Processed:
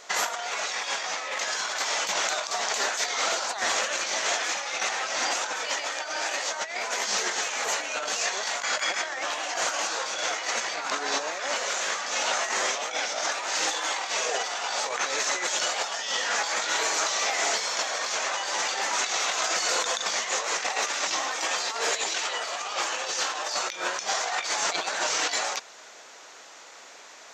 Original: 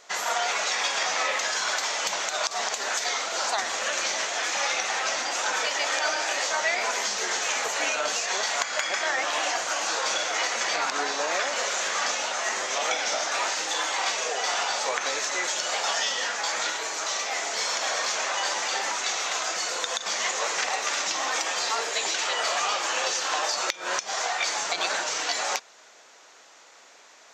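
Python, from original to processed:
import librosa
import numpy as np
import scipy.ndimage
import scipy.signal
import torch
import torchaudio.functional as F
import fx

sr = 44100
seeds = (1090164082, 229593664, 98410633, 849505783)

y = fx.over_compress(x, sr, threshold_db=-30.0, ratio=-0.5)
y = F.gain(torch.from_numpy(y), 2.0).numpy()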